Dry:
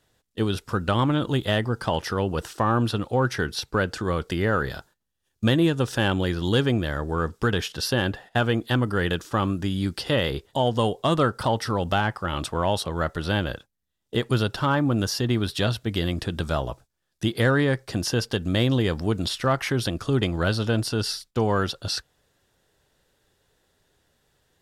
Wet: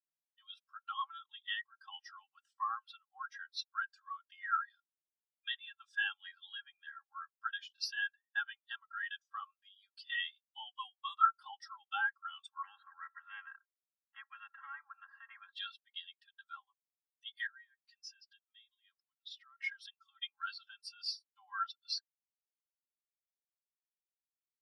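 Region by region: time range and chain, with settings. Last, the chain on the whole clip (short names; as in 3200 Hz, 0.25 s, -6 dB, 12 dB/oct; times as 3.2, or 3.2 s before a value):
6.25–6.9 high shelf 4000 Hz -10.5 dB + three-band squash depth 100%
12.63–15.53 LPF 1400 Hz 24 dB/oct + spectral compressor 4:1
17.46–19.64 compressor 5:1, threshold -28 dBFS + weighting filter A
whole clip: Bessel high-pass 1600 Hz, order 8; comb 3.7 ms, depth 66%; spectral expander 2.5:1; gain -3 dB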